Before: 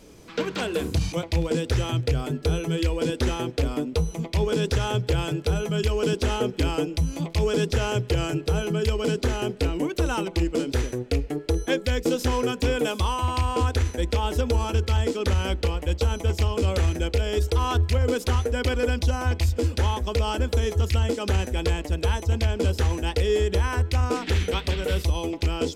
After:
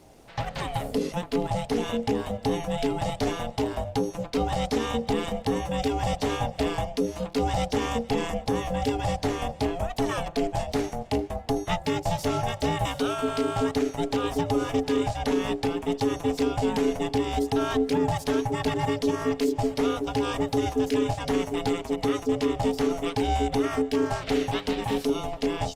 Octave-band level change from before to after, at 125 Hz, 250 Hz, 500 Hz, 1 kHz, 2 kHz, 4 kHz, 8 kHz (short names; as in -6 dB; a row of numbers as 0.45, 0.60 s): -9.0, +2.5, 0.0, +2.5, -3.0, -3.0, -3.0 dB